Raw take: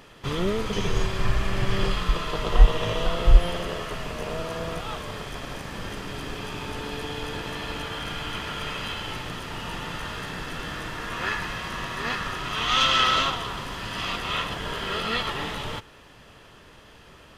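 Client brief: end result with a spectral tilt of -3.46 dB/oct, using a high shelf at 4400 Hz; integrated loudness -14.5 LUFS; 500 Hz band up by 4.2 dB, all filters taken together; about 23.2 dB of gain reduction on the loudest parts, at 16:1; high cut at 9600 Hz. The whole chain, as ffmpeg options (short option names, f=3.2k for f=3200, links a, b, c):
-af "lowpass=9.6k,equalizer=f=500:t=o:g=5,highshelf=f=4.4k:g=8,acompressor=threshold=-30dB:ratio=16,volume=19.5dB"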